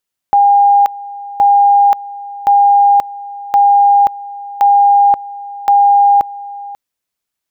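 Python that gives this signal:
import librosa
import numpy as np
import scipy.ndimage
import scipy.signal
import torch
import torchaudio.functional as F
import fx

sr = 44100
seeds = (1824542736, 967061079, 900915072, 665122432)

y = fx.two_level_tone(sr, hz=808.0, level_db=-5.0, drop_db=19.0, high_s=0.53, low_s=0.54, rounds=6)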